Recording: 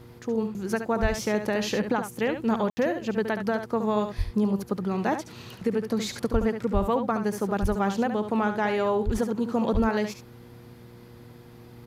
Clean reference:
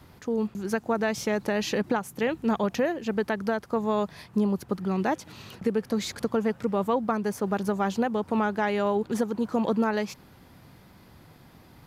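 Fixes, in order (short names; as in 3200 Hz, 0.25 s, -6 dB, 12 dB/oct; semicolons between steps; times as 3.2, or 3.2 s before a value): de-hum 119.1 Hz, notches 4; de-plosive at 1.01/4.17/6.32/6.73/7.61/9.05/9.73; room tone fill 2.7–2.77; inverse comb 71 ms -8.5 dB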